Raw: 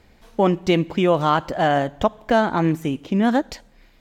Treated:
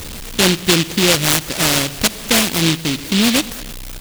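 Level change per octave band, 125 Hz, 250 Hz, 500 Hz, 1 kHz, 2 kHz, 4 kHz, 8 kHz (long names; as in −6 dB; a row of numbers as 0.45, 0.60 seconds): +3.5 dB, +2.5 dB, −2.0 dB, −4.5 dB, +8.5 dB, +17.0 dB, can't be measured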